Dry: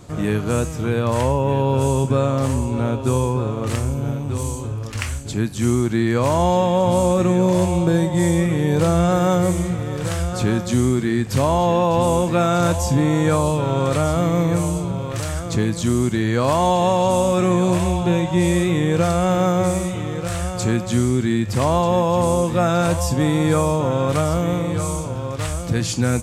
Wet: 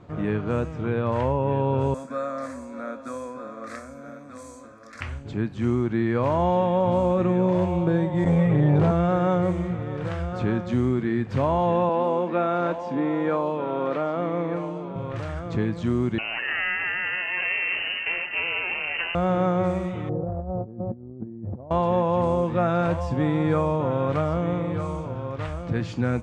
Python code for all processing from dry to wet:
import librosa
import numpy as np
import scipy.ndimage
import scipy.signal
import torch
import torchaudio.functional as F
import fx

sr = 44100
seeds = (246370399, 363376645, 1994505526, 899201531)

y = fx.chain(x, sr, fx.tilt_eq(slope=4.0),
    fx.fixed_phaser(hz=590.0, stages=8), at=(1.94, 5.01))
y = fx.chain(y, sr, fx.low_shelf(hz=120.0, db=10.0),
    fx.comb(ms=7.3, depth=0.83),
    fx.transformer_sat(knee_hz=290.0), at=(8.24, 8.91))
y = fx.chain(y, sr, fx.highpass(hz=210.0, slope=24),
    fx.air_absorb(metres=110.0), at=(11.89, 14.96))
y = fx.chain(y, sr, fx.lower_of_two(delay_ms=0.89),
    fx.freq_invert(carrier_hz=2900), at=(16.18, 19.15))
y = fx.chain(y, sr, fx.cheby1_lowpass(hz=700.0, order=3),
    fx.over_compress(threshold_db=-26.0, ratio=-0.5), at=(20.09, 21.71))
y = scipy.signal.sosfilt(scipy.signal.butter(2, 2200.0, 'lowpass', fs=sr, output='sos'), y)
y = fx.low_shelf(y, sr, hz=75.0, db=-6.5)
y = y * 10.0 ** (-4.0 / 20.0)